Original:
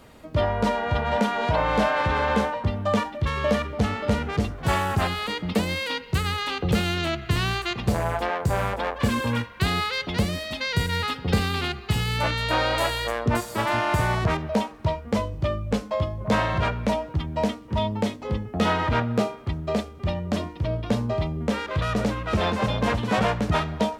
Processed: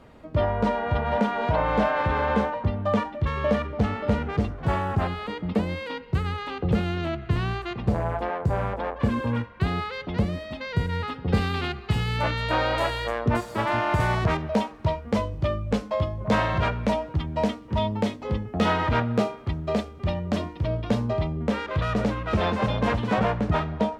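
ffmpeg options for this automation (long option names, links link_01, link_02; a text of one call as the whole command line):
ffmpeg -i in.wav -af "asetnsamples=nb_out_samples=441:pad=0,asendcmd='4.65 lowpass f 1000;11.34 lowpass f 2500;14 lowpass f 5400;21.13 lowpass f 3200;23.14 lowpass f 1600',lowpass=frequency=1800:poles=1" out.wav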